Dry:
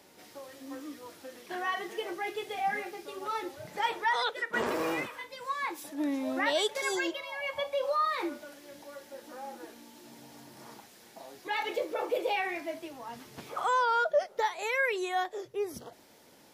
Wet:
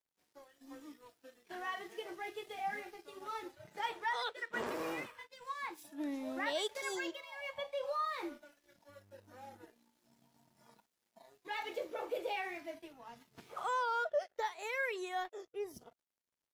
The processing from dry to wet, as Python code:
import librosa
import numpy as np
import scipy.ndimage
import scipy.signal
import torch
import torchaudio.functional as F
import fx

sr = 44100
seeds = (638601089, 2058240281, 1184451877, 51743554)

y = np.sign(x) * np.maximum(np.abs(x) - 10.0 ** (-52.5 / 20.0), 0.0)
y = fx.noise_reduce_blind(y, sr, reduce_db=9)
y = fx.dmg_buzz(y, sr, base_hz=100.0, harmonics=28, level_db=-59.0, tilt_db=-8, odd_only=False, at=(8.88, 9.62), fade=0.02)
y = y * librosa.db_to_amplitude(-7.5)